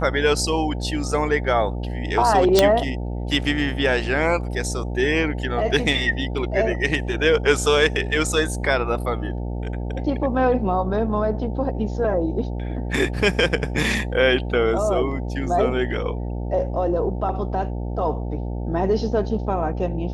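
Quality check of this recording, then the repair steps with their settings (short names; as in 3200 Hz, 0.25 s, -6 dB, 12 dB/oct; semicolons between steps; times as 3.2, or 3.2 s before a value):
buzz 60 Hz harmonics 15 -27 dBFS
2.59 pop 0 dBFS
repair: de-click; de-hum 60 Hz, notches 15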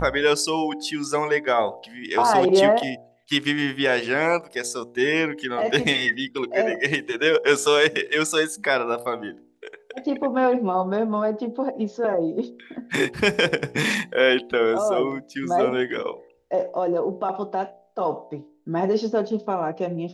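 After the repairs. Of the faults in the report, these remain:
none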